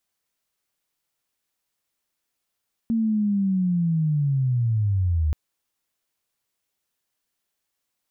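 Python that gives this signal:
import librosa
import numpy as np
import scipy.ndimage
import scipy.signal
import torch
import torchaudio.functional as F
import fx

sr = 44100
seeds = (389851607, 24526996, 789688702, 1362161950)

y = fx.chirp(sr, length_s=2.43, from_hz=230.0, to_hz=73.0, law='linear', from_db=-19.0, to_db=-18.5)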